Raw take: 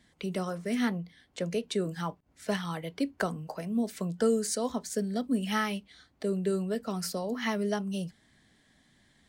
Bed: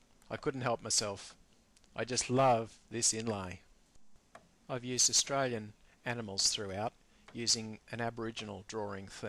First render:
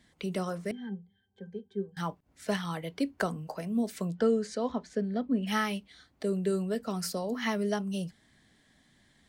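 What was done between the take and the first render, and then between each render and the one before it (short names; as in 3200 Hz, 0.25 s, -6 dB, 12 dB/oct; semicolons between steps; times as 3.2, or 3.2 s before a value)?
0.71–1.97 octave resonator G, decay 0.13 s; 4.13–5.46 LPF 4100 Hz -> 2200 Hz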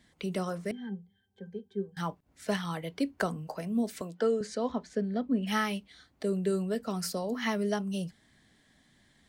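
4.01–4.41 HPF 300 Hz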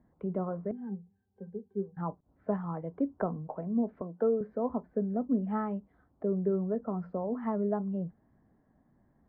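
LPF 1100 Hz 24 dB/oct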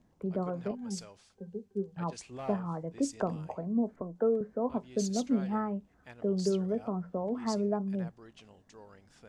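add bed -13.5 dB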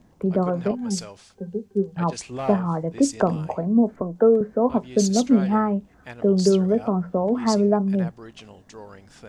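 gain +11.5 dB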